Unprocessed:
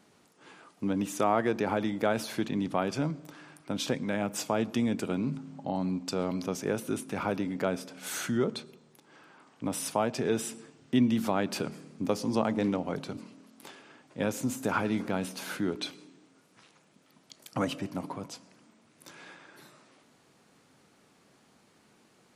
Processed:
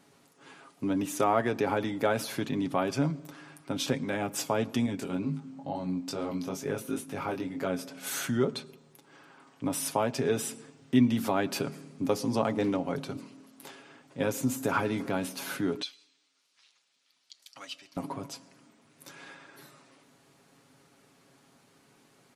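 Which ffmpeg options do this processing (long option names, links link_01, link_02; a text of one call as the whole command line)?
ffmpeg -i in.wav -filter_complex "[0:a]asettb=1/sr,asplit=3[link_01][link_02][link_03];[link_01]atrim=end=4.864[link_04];[link_02]atrim=start=4.86:end=7.79,asetpts=PTS-STARTPTS,afade=type=in:duration=0.004:curve=qsin,afade=type=out:start_time=2.926:duration=0.004:curve=qsin,flanger=delay=19:depth=4:speed=2.2[link_05];[link_03]atrim=start=7.786[link_06];[link_04][link_05]acrossfade=duration=0.004:curve1=hsin:curve2=qsin[link_07];[link_07][link_06]acrossfade=duration=0.004:curve1=qsin:curve2=hsin,asettb=1/sr,asplit=3[link_08][link_09][link_10];[link_08]atrim=end=15.824[link_11];[link_09]atrim=start=15.82:end=17.97,asetpts=PTS-STARTPTS,afade=type=in:duration=0.004:curve=qsin,afade=type=out:start_time=2.146:duration=0.004:curve=qsin,bandpass=frequency=4300:width_type=q:width=1.4[link_12];[link_10]atrim=start=17.966[link_13];[link_11][link_12]acrossfade=duration=0.004:curve1=hsin:curve2=qsin[link_14];[link_14][link_13]acrossfade=duration=0.004:curve1=qsin:curve2=hsin,equalizer=frequency=12000:width_type=o:width=0.34:gain=5.5,aecho=1:1:7.3:0.49" out.wav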